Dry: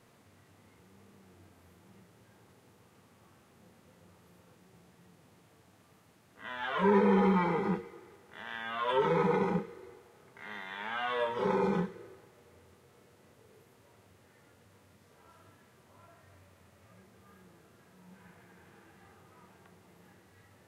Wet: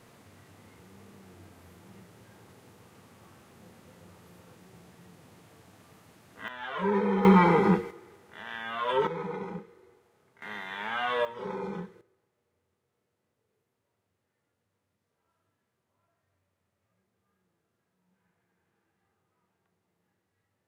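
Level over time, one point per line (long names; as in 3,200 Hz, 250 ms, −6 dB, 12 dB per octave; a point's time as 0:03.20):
+6.5 dB
from 0:06.48 −2 dB
from 0:07.25 +9 dB
from 0:07.91 +2 dB
from 0:09.07 −7.5 dB
from 0:10.42 +4 dB
from 0:11.25 −6.5 dB
from 0:12.01 −18.5 dB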